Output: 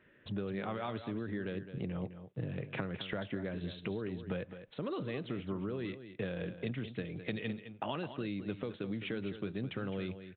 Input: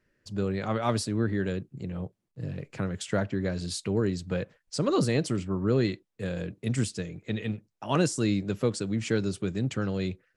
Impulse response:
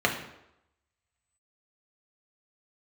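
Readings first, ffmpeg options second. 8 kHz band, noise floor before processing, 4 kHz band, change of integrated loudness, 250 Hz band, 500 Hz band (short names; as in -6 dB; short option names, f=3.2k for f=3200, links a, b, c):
under -40 dB, -78 dBFS, -9.0 dB, -10.0 dB, -9.5 dB, -9.5 dB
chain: -filter_complex "[0:a]highpass=f=150:p=1,acrossover=split=2900[a][b];[a]alimiter=limit=-21dB:level=0:latency=1[c];[c][b]amix=inputs=2:normalize=0,acompressor=threshold=-44dB:ratio=12,crystalizer=i=1:c=0,asplit=2[d][e];[e]aecho=0:1:211:0.282[f];[d][f]amix=inputs=2:normalize=0,aresample=8000,aresample=44100,volume=9dB"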